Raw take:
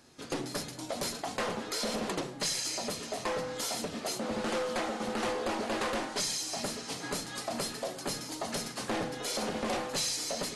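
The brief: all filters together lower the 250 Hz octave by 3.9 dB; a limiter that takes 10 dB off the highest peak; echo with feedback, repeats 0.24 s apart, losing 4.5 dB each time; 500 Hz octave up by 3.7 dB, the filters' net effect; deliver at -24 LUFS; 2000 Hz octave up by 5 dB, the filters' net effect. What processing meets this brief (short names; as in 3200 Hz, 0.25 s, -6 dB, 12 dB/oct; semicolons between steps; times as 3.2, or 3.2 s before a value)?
bell 250 Hz -7 dB; bell 500 Hz +5.5 dB; bell 2000 Hz +6 dB; limiter -28 dBFS; feedback echo 0.24 s, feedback 60%, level -4.5 dB; gain +10.5 dB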